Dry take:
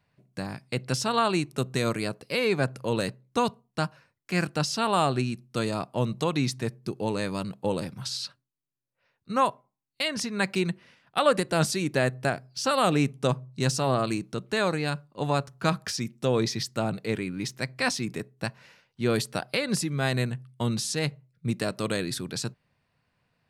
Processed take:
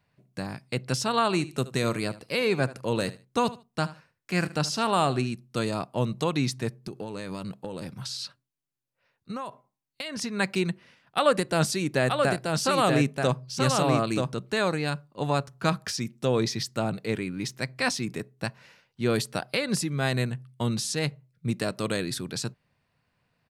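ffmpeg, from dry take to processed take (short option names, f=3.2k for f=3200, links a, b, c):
-filter_complex "[0:a]asplit=3[a][b][c];[a]afade=t=out:st=1.3:d=0.02[d];[b]aecho=1:1:75|150:0.141|0.0283,afade=t=in:st=1.3:d=0.02,afade=t=out:st=5.3:d=0.02[e];[c]afade=t=in:st=5.3:d=0.02[f];[d][e][f]amix=inputs=3:normalize=0,asettb=1/sr,asplit=3[g][h][i];[g]atrim=end=6.834[j];[h]atrim=start=6.83:end=10.22,asetpts=PTS-STARTPTS,afade=t=in:d=0.004:c=qsin,afade=t=out:st=3.386:d=0.004:c=qsin,acompressor=threshold=-30dB:ratio=12:attack=3.2:release=140:knee=1:detection=peak[k];[i]atrim=start=10.216[l];[j][k]acrossfade=d=0.004:c1=hsin:c2=qsin[m];[m][l]acrossfade=d=0.004:c1=qsin:c2=hsin,asplit=3[n][o][p];[n]afade=t=out:st=12.07:d=0.02[q];[o]aecho=1:1:931:0.631,afade=t=in:st=12.07:d=0.02,afade=t=out:st=14.48:d=0.02[r];[p]afade=t=in:st=14.48:d=0.02[s];[q][r][s]amix=inputs=3:normalize=0"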